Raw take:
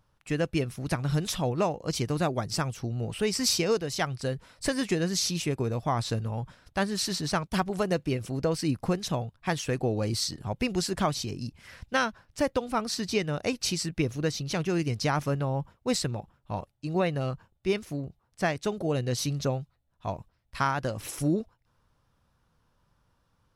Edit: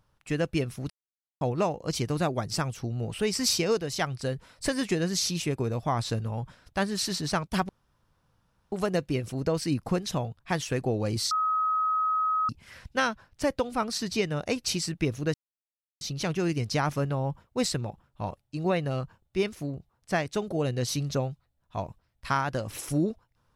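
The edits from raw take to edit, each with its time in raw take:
0.90–1.41 s: mute
7.69 s: insert room tone 1.03 s
10.28–11.46 s: bleep 1.27 kHz -23 dBFS
14.31 s: insert silence 0.67 s

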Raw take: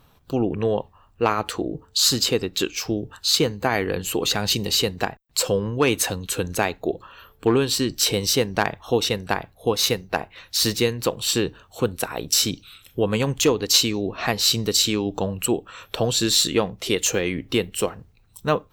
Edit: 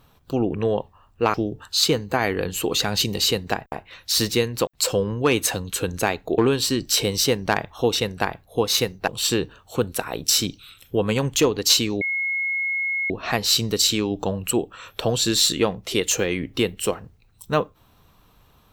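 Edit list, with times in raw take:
1.34–2.85 s: delete
6.94–7.47 s: delete
10.17–11.12 s: move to 5.23 s
14.05 s: add tone 2.17 kHz -21.5 dBFS 1.09 s

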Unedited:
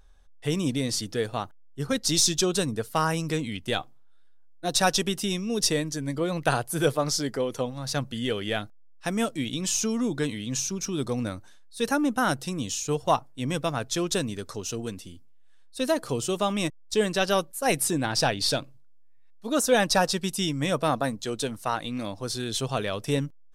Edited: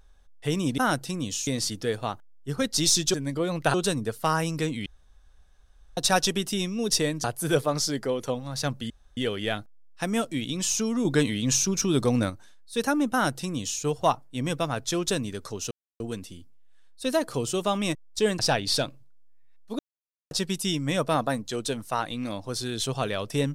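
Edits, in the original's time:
3.57–4.68 s: room tone
5.95–6.55 s: move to 2.45 s
8.21 s: insert room tone 0.27 s
10.09–11.34 s: gain +5.5 dB
12.16–12.85 s: copy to 0.78 s
14.75 s: insert silence 0.29 s
17.14–18.13 s: delete
19.53–20.05 s: mute

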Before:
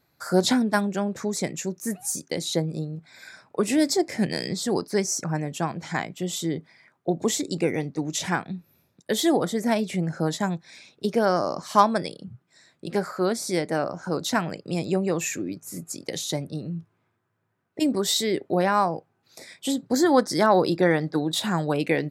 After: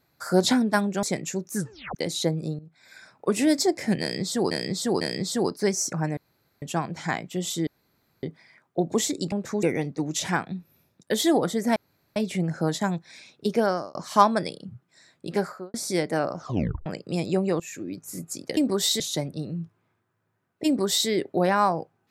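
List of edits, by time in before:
1.03–1.34 s: move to 7.62 s
1.85 s: tape stop 0.41 s
2.90–3.59 s: fade in, from -14 dB
4.32–4.82 s: loop, 3 plays
5.48 s: insert room tone 0.45 s
6.53 s: insert room tone 0.56 s
9.75 s: insert room tone 0.40 s
11.19–11.54 s: fade out
12.99–13.33 s: studio fade out
13.96 s: tape stop 0.49 s
15.19–15.61 s: fade in, from -18 dB
17.82–18.25 s: copy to 16.16 s

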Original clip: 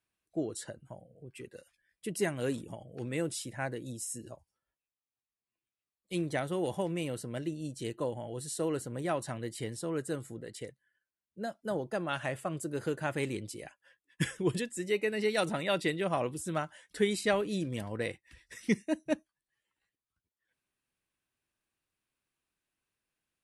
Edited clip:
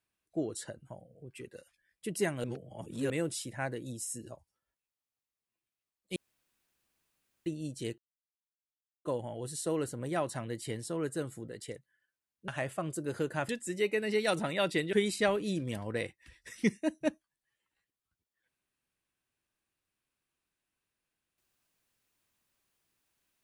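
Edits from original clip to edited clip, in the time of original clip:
2.44–3.10 s: reverse
6.16–7.46 s: room tone
7.98 s: insert silence 1.07 s
11.41–12.15 s: delete
13.16–14.59 s: delete
16.03–16.98 s: delete

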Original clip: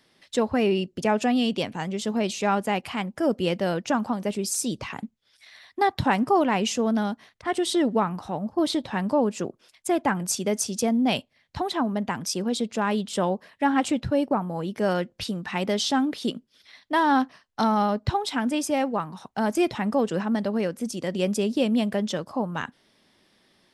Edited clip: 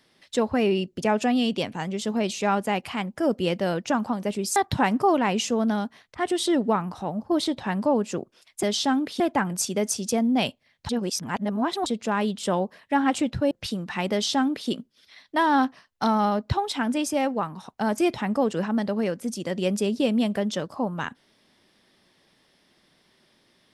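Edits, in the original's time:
4.56–5.83 s: delete
11.59–12.56 s: reverse
14.21–15.08 s: delete
15.69–16.26 s: copy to 9.90 s

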